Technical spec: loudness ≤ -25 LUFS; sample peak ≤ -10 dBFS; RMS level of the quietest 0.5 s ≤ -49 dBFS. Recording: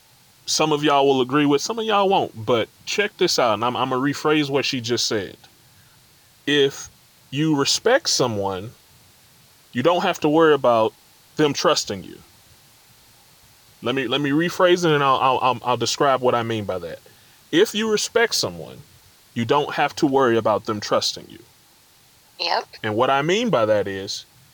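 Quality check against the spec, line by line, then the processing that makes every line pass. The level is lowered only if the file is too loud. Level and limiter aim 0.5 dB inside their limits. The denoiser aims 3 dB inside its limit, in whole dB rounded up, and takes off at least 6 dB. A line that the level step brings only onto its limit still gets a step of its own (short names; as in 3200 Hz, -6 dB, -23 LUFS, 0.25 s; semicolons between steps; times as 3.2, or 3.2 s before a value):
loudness -20.0 LUFS: fail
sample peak -6.0 dBFS: fail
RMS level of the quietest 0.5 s -54 dBFS: OK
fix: gain -5.5 dB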